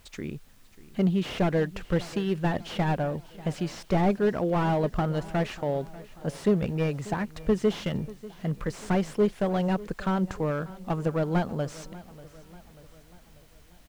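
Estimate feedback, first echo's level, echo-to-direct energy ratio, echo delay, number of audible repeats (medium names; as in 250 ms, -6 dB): 53%, -19.0 dB, -17.5 dB, 590 ms, 3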